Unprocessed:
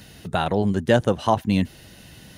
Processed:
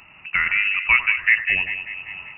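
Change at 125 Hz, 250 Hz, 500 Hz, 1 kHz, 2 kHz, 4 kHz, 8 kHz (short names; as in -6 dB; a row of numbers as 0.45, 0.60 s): under -20 dB, under -25 dB, under -25 dB, -7.5 dB, +16.5 dB, +1.5 dB, under -35 dB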